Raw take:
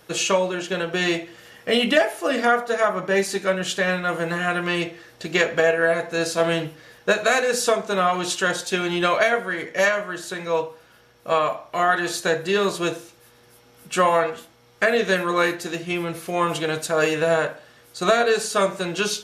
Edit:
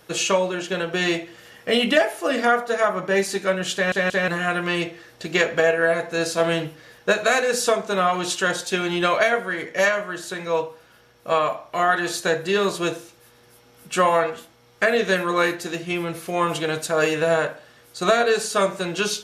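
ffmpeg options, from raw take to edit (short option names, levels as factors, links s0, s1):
-filter_complex "[0:a]asplit=4[s0][s1][s2][s3];[s0]atrim=end=3.922[s4];[s1]atrim=start=3.738:end=3.922[s5];[s2]atrim=start=3.738:end=3.922[s6];[s3]atrim=start=4.278[s7];[s4][s5]acrossfade=d=0.004:c1=hsin:c2=hsin[s8];[s8][s6]acrossfade=d=0.004:c1=hsin:c2=hsin[s9];[s9][s7]acrossfade=d=0.004:c1=hsin:c2=hsin"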